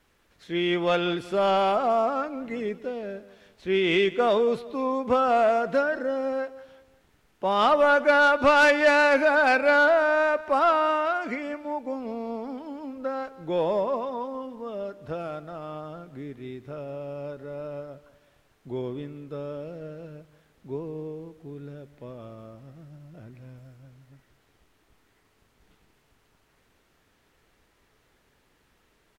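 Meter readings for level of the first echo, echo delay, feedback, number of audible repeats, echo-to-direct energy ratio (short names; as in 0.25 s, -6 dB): -18.0 dB, 0.183 s, 40%, 3, -17.5 dB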